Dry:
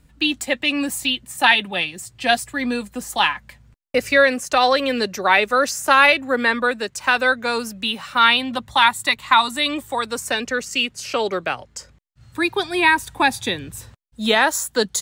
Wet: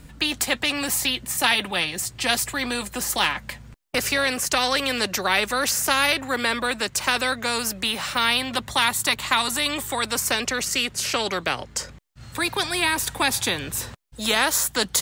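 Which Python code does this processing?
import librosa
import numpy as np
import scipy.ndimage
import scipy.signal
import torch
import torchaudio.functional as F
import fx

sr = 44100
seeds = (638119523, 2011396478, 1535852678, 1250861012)

y = fx.spectral_comp(x, sr, ratio=2.0)
y = y * librosa.db_to_amplitude(-4.0)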